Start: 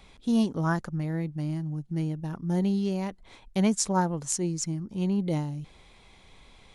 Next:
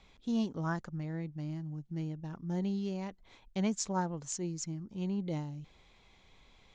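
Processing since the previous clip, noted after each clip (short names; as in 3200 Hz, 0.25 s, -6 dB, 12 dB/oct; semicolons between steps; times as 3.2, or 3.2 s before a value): Chebyshev low-pass 7100 Hz, order 4; gain -7 dB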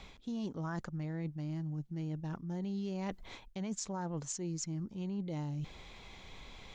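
limiter -28.5 dBFS, peak gain reduction 8.5 dB; reverse; compressor 6:1, threshold -47 dBFS, peak gain reduction 13.5 dB; reverse; gain +10.5 dB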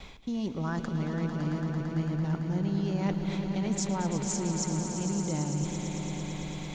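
gate with hold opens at -47 dBFS; swelling echo 0.112 s, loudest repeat 5, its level -10 dB; gain +6 dB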